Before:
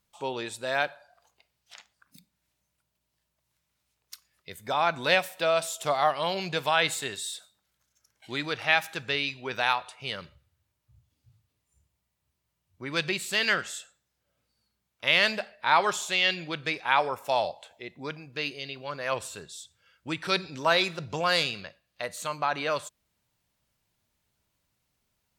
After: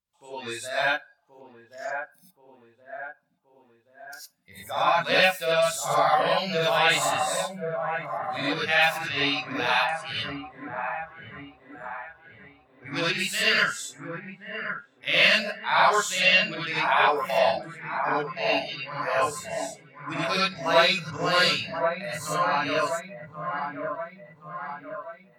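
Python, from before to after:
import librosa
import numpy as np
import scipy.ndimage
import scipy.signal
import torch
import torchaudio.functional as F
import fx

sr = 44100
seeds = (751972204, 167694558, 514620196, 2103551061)

y = fx.echo_wet_lowpass(x, sr, ms=1076, feedback_pct=59, hz=1500.0, wet_db=-5.0)
y = fx.rev_gated(y, sr, seeds[0], gate_ms=130, shape='rising', drr_db=-7.5)
y = fx.noise_reduce_blind(y, sr, reduce_db=13)
y = y * librosa.db_to_amplitude(-4.5)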